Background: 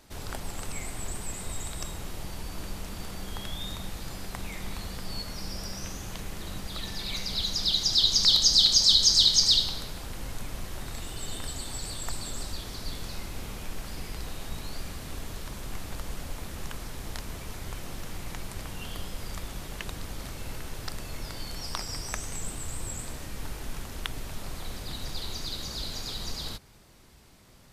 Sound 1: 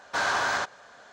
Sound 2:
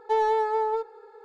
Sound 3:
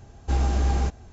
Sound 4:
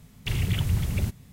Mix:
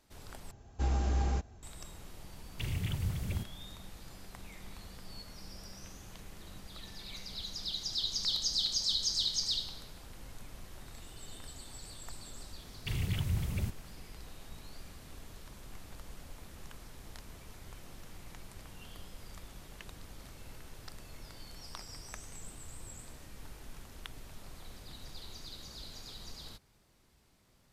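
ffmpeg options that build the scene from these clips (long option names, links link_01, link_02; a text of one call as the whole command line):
ffmpeg -i bed.wav -i cue0.wav -i cue1.wav -i cue2.wav -i cue3.wav -filter_complex "[4:a]asplit=2[link_01][link_02];[0:a]volume=-12dB,asplit=2[link_03][link_04];[link_03]atrim=end=0.514[link_05];[3:a]atrim=end=1.12,asetpts=PTS-STARTPTS,volume=-8dB[link_06];[link_04]atrim=start=1.626[link_07];[link_01]atrim=end=1.32,asetpts=PTS-STARTPTS,volume=-9.5dB,afade=type=in:duration=0.004:curve=hsin,afade=type=out:start_time=1.316:duration=0.004:curve=hsin,adelay=2330[link_08];[link_02]atrim=end=1.32,asetpts=PTS-STARTPTS,volume=-8dB,afade=type=in:duration=0.004:curve=hsin,afade=type=out:start_time=1.316:duration=0.004:curve=hsin,adelay=12600[link_09];[link_05][link_06]acrossfade=duration=0.004:curve1=hsin:curve2=hsin[link_10];[link_10][link_07]acrossfade=duration=0.004:curve1=hsin:curve2=hsin[link_11];[link_11][link_08][link_09]amix=inputs=3:normalize=0" out.wav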